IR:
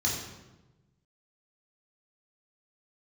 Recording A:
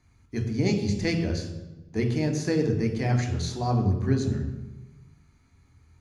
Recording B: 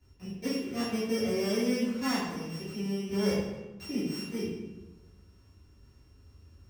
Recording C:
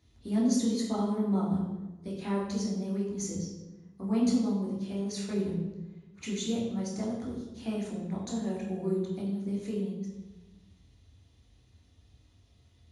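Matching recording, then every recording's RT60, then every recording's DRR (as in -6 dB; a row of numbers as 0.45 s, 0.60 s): C; 1.1 s, 1.1 s, 1.1 s; 3.5 dB, -12.5 dB, -4.5 dB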